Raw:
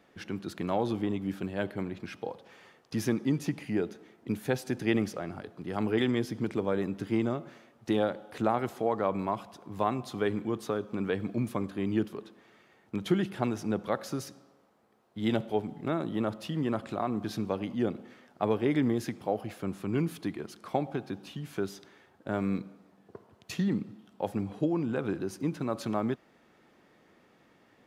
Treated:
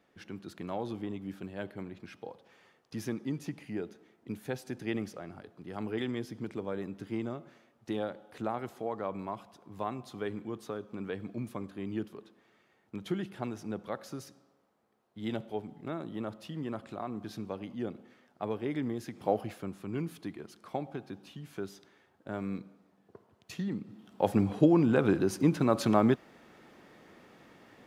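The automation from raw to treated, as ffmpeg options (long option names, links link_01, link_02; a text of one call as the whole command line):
ffmpeg -i in.wav -af "volume=14dB,afade=type=in:start_time=19.13:duration=0.16:silence=0.354813,afade=type=out:start_time=19.29:duration=0.42:silence=0.398107,afade=type=in:start_time=23.83:duration=0.49:silence=0.251189" out.wav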